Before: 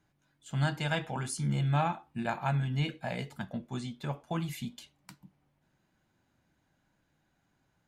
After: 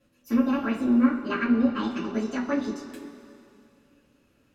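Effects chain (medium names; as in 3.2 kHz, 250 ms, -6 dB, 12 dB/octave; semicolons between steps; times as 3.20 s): dynamic bell 7.2 kHz, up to -4 dB, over -54 dBFS, Q 0.72; speed mistake 45 rpm record played at 78 rpm; low-pass that closes with the level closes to 930 Hz, closed at -26 dBFS; bass shelf 200 Hz +10 dB; two-slope reverb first 0.22 s, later 2.6 s, from -18 dB, DRR -9.5 dB; trim -3.5 dB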